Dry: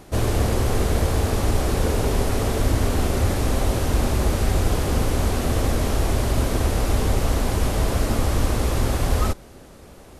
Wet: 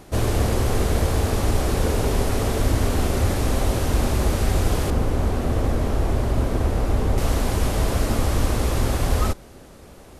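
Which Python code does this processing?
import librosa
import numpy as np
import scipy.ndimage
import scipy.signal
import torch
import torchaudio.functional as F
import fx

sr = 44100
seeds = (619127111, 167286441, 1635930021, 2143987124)

y = fx.high_shelf(x, sr, hz=2200.0, db=-10.0, at=(4.9, 7.18))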